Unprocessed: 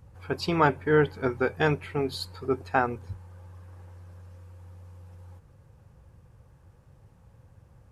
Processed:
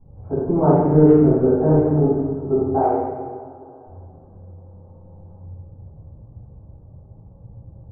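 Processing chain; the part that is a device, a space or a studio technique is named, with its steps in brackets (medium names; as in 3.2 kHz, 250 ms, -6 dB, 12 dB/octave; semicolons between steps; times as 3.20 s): 2.55–3.87 s: elliptic high-pass 290 Hz; inverse Chebyshev low-pass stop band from 3.5 kHz, stop band 70 dB; saturated reverb return (on a send at -9 dB: reverberation RT60 2.5 s, pre-delay 33 ms + saturation -20 dBFS, distortion -14 dB); on the sum: simulated room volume 570 m³, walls mixed, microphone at 9.2 m; trim -7.5 dB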